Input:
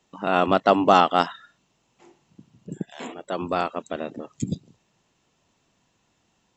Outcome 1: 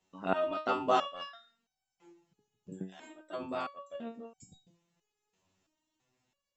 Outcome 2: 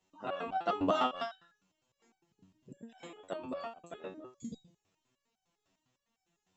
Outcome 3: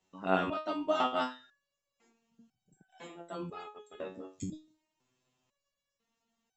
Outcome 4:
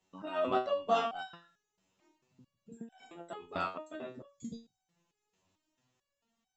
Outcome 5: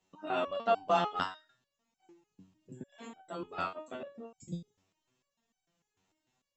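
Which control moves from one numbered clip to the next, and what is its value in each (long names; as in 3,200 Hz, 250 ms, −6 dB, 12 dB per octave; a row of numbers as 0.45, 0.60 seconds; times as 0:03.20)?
step-sequenced resonator, speed: 3, 9.9, 2, 4.5, 6.7 Hertz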